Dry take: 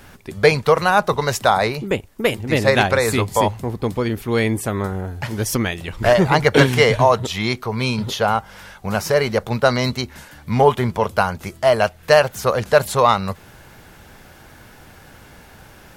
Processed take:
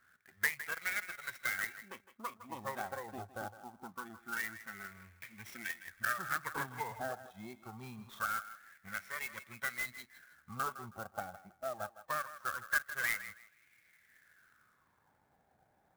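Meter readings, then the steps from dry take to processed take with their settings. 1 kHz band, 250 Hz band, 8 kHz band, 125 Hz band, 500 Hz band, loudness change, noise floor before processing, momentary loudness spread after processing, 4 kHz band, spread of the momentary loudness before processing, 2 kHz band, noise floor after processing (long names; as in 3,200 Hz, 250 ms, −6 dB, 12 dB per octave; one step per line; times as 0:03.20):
−22.0 dB, −29.5 dB, −17.0 dB, −32.0 dB, −31.5 dB, −21.0 dB, −45 dBFS, 15 LU, −24.5 dB, 10 LU, −14.5 dB, −73 dBFS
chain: lower of the sound and its delayed copy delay 0.53 ms
noise reduction from a noise print of the clip's start 12 dB
bass and treble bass +13 dB, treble +6 dB
LFO wah 0.24 Hz 770–2,300 Hz, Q 6.1
low-pass filter 5,600 Hz 24 dB per octave
downward compressor 2 to 1, threshold −51 dBFS, peak gain reduction 18 dB
dynamic equaliser 1,600 Hz, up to +8 dB, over −58 dBFS, Q 1.9
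feedback echo with a high-pass in the loop 160 ms, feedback 24%, high-pass 420 Hz, level −13 dB
converter with an unsteady clock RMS 0.033 ms
level +1.5 dB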